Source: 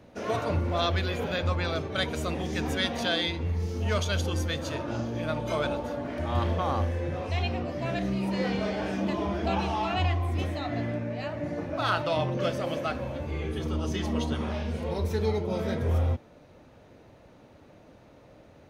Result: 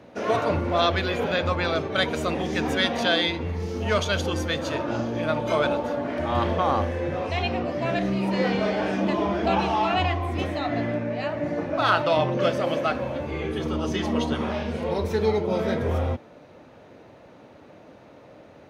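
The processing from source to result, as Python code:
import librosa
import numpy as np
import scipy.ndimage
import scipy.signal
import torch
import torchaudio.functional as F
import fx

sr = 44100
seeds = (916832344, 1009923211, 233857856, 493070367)

y = fx.highpass(x, sr, hz=210.0, slope=6)
y = fx.high_shelf(y, sr, hz=5400.0, db=-9.0)
y = F.gain(torch.from_numpy(y), 7.0).numpy()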